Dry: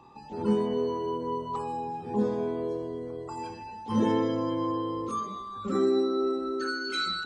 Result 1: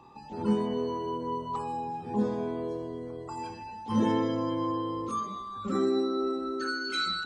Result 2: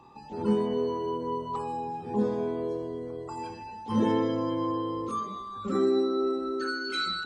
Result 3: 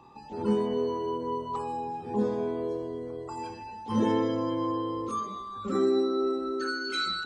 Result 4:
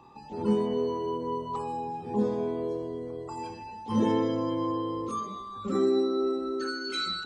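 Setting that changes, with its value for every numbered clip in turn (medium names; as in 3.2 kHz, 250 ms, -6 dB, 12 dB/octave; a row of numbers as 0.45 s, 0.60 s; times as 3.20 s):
dynamic bell, frequency: 430 Hz, 6.4 kHz, 160 Hz, 1.5 kHz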